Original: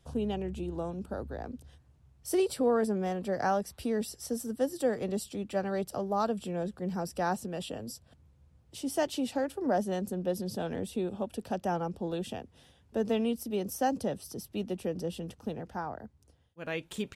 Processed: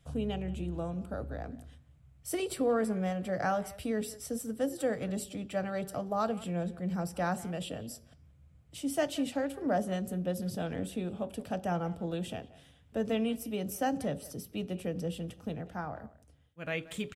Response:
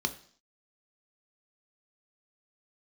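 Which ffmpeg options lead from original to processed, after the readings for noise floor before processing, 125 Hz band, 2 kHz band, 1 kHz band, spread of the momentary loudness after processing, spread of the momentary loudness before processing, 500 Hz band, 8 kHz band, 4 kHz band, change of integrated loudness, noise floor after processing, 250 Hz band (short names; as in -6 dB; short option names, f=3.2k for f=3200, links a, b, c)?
-64 dBFS, +2.0 dB, +1.0 dB, -2.5 dB, 9 LU, 11 LU, -2.5 dB, -0.5 dB, -0.5 dB, -1.5 dB, -61 dBFS, -0.5 dB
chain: -filter_complex "[0:a]asplit=2[a][b];[b]adelay=180,highpass=300,lowpass=3.4k,asoftclip=type=hard:threshold=-26.5dB,volume=-18dB[c];[a][c]amix=inputs=2:normalize=0,asplit=2[d][e];[1:a]atrim=start_sample=2205[f];[e][f]afir=irnorm=-1:irlink=0,volume=-13dB[g];[d][g]amix=inputs=2:normalize=0"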